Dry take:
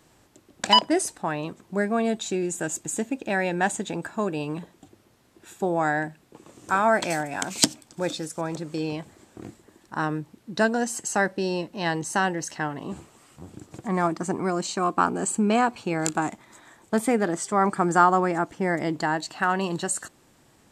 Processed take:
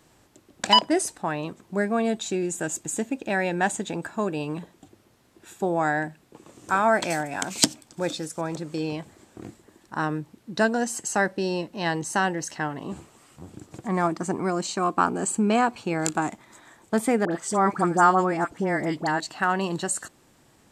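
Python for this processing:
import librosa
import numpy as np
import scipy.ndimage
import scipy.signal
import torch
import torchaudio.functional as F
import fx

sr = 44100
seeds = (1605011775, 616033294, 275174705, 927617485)

y = fx.dispersion(x, sr, late='highs', ms=63.0, hz=1400.0, at=(17.25, 19.2))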